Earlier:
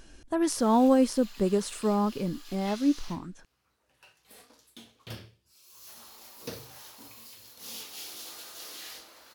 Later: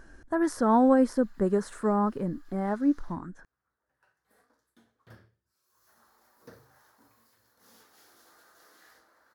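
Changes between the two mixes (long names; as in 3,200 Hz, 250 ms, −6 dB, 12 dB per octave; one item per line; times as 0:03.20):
background −11.0 dB
master: add high shelf with overshoot 2,100 Hz −8 dB, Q 3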